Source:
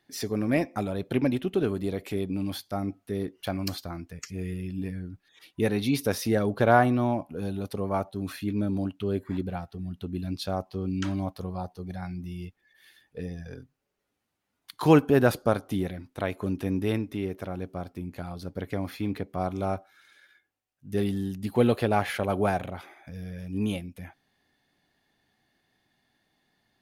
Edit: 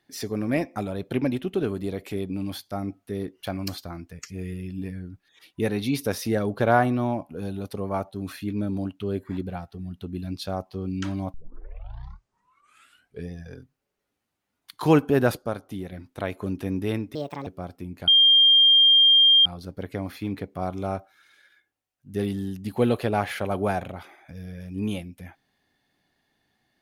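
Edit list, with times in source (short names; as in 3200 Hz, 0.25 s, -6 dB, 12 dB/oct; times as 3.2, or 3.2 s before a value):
11.34 tape start 1.96 s
15.37–15.92 gain -5.5 dB
17.15–17.63 speed 152%
18.24 add tone 3200 Hz -12.5 dBFS 1.38 s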